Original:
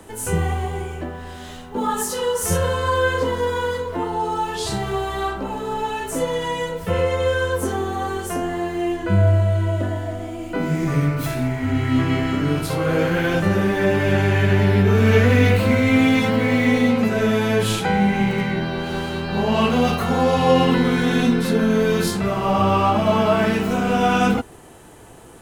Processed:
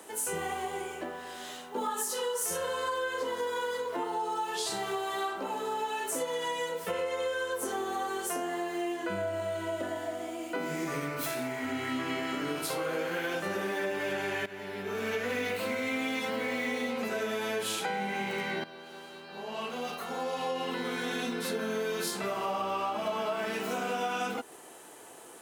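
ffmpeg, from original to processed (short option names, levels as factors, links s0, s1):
-filter_complex "[0:a]asplit=3[s0][s1][s2];[s0]atrim=end=14.46,asetpts=PTS-STARTPTS,afade=t=out:st=14.456:d=0.004:c=hsin:silence=0.199526[s3];[s1]atrim=start=14.46:end=18.64,asetpts=PTS-STARTPTS,afade=t=in:d=0.93:c=qua:silence=0.199526,afade=t=out:st=4.176:d=0.004:c=hsin:silence=0.188365[s4];[s2]atrim=start=18.64,asetpts=PTS-STARTPTS,afade=t=in:d=3.25:c=qua:silence=0.188365[s5];[s3][s4][s5]concat=n=3:v=0:a=1,highpass=360,highshelf=f=4500:g=5,acompressor=threshold=0.0562:ratio=6,volume=0.596"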